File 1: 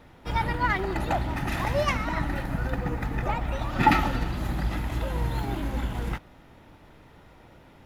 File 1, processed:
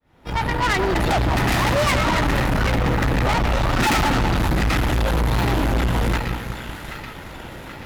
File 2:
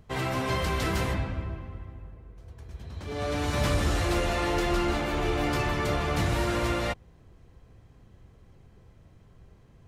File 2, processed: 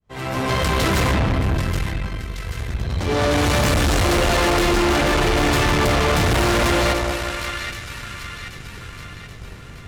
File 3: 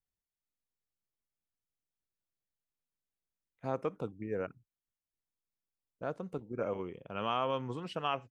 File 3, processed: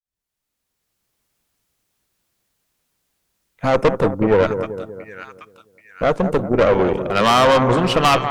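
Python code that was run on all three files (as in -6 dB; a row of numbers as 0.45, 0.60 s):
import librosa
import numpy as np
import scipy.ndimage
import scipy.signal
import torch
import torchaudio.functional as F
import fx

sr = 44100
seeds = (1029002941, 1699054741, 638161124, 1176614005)

y = fx.fade_in_head(x, sr, length_s=1.26)
y = fx.echo_split(y, sr, split_hz=1300.0, low_ms=192, high_ms=780, feedback_pct=52, wet_db=-11.0)
y = fx.tube_stage(y, sr, drive_db=36.0, bias=0.7)
y = y * 10.0 ** (-20 / 20.0) / np.sqrt(np.mean(np.square(y)))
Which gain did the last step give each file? +19.0, +20.0, +27.0 dB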